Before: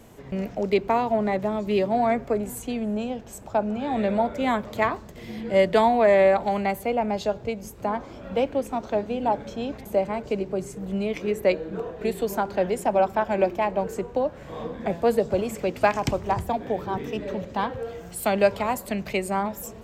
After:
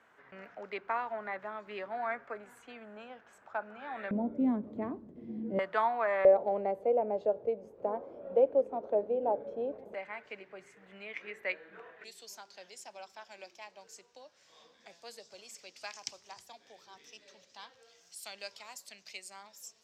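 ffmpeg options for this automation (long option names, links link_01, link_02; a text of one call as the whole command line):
ffmpeg -i in.wav -af "asetnsamples=nb_out_samples=441:pad=0,asendcmd='4.11 bandpass f 270;5.59 bandpass f 1300;6.25 bandpass f 510;9.94 bandpass f 1900;12.04 bandpass f 5400',bandpass=frequency=1500:width_type=q:width=3:csg=0" out.wav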